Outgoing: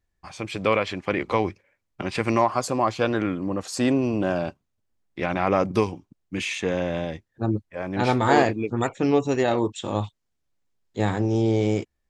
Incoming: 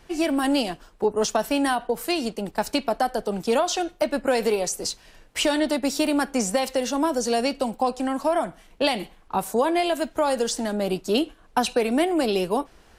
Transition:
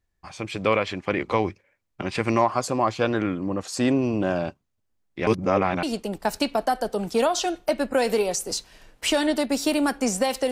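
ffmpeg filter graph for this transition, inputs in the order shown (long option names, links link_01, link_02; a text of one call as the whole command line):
ffmpeg -i cue0.wav -i cue1.wav -filter_complex "[0:a]apad=whole_dur=10.51,atrim=end=10.51,asplit=2[link_01][link_02];[link_01]atrim=end=5.272[link_03];[link_02]atrim=start=5.268:end=5.832,asetpts=PTS-STARTPTS,areverse[link_04];[1:a]atrim=start=2.158:end=6.84[link_05];[link_03][link_04]acrossfade=duration=0.004:curve1=hsin:curve2=hsin[link_06];[link_06][link_05]acrossfade=duration=0.004:curve1=hsin:curve2=hsin" out.wav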